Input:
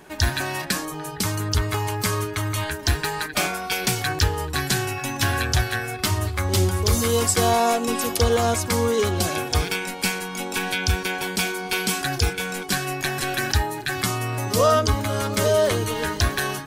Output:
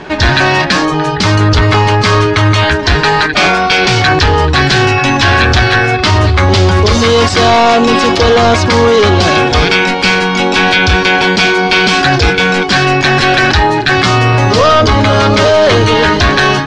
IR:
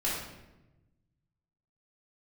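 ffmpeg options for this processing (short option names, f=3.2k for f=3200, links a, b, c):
-af "apsyclip=23.5dB,lowpass=f=5k:w=0.5412,lowpass=f=5k:w=1.3066,volume=-3.5dB"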